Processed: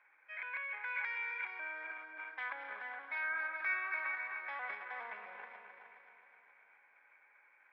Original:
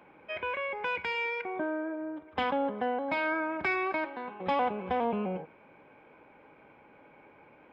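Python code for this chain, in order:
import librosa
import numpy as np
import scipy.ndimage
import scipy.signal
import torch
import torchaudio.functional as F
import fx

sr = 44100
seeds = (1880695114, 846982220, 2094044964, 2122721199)

y = fx.reverse_delay_fb(x, sr, ms=132, feedback_pct=77, wet_db=-10.0)
y = fx.high_shelf(y, sr, hz=2100.0, db=-11.5)
y = fx.transient(y, sr, attack_db=-2, sustain_db=11)
y = fx.ladder_bandpass(y, sr, hz=2100.0, resonance_pct=55)
y = fx.peak_eq(y, sr, hz=2900.0, db=-11.0, octaves=0.21)
y = y + 10.0 ** (-9.5 / 20.0) * np.pad(y, (int(422 * sr / 1000.0), 0))[:len(y)]
y = y * 10.0 ** (8.0 / 20.0)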